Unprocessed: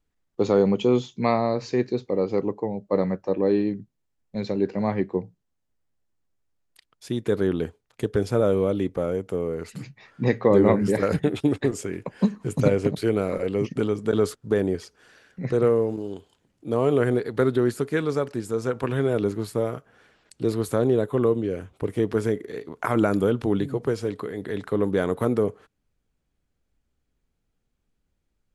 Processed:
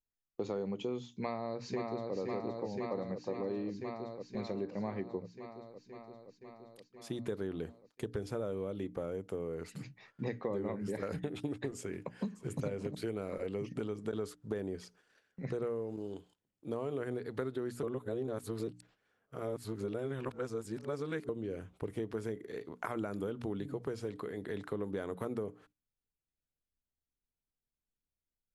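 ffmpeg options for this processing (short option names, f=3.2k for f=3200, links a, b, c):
-filter_complex "[0:a]asplit=2[a][b];[b]afade=t=in:st=1.13:d=0.01,afade=t=out:st=2.14:d=0.01,aecho=0:1:520|1040|1560|2080|2600|3120|3640|4160|4680|5200|5720|6240:0.668344|0.501258|0.375943|0.281958|0.211468|0.158601|0.118951|0.0892131|0.0669099|0.0501824|0.0376368|0.0282276[c];[a][c]amix=inputs=2:normalize=0,asplit=2[d][e];[e]afade=t=in:st=11.77:d=0.01,afade=t=out:st=12.55:d=0.01,aecho=0:1:580|1160|1740:0.177828|0.044457|0.0111142[f];[d][f]amix=inputs=2:normalize=0,asplit=3[g][h][i];[g]atrim=end=17.832[j];[h]atrim=start=17.828:end=21.292,asetpts=PTS-STARTPTS,areverse[k];[i]atrim=start=21.288[l];[j][k]acrossfade=d=0.004:c1=hsin:c2=hsin[m];[m][l]acrossfade=d=0.004:c1=hsin:c2=hsin,bandreject=f=60:t=h:w=6,bandreject=f=120:t=h:w=6,bandreject=f=180:t=h:w=6,bandreject=f=240:t=h:w=6,bandreject=f=300:t=h:w=6,agate=range=-12dB:threshold=-52dB:ratio=16:detection=peak,acompressor=threshold=-26dB:ratio=5,volume=-8dB"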